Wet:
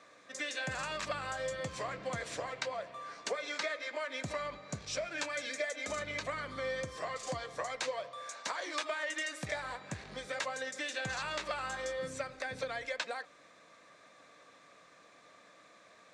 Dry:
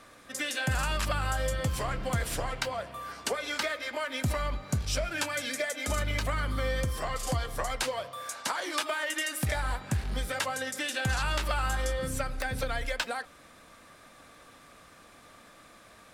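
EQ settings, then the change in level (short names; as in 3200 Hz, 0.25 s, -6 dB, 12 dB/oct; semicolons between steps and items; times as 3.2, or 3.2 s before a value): speaker cabinet 230–6800 Hz, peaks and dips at 240 Hz -8 dB, 360 Hz -5 dB, 840 Hz -6 dB, 1400 Hz -6 dB, 3000 Hz -7 dB, 5000 Hz -5 dB; -2.0 dB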